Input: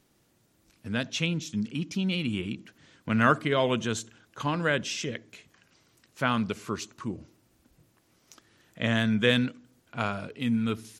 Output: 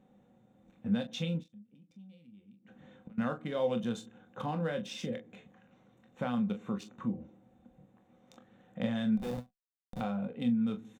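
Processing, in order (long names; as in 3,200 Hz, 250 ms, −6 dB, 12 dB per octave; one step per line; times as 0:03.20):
adaptive Wiener filter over 9 samples
downward compressor 2.5 to 1, threshold −39 dBFS, peak gain reduction 15 dB
0:01.43–0:03.18: gate with flip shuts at −37 dBFS, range −25 dB
0:09.17–0:10.01: comparator with hysteresis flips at −35 dBFS
hollow resonant body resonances 210/520/740/3,600 Hz, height 17 dB, ringing for 55 ms
on a send: ambience of single reflections 25 ms −9 dB, 41 ms −11 dB
on the sum: every ending faded ahead of time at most 350 dB per second
level −5.5 dB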